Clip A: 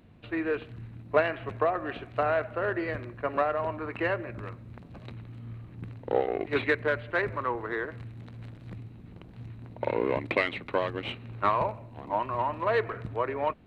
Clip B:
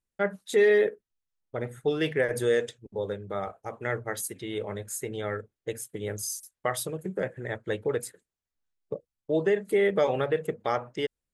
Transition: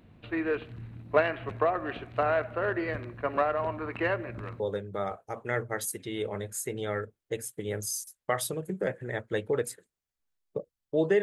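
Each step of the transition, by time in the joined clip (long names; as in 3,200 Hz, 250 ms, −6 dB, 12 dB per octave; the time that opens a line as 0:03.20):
clip A
0:04.60: continue with clip B from 0:02.96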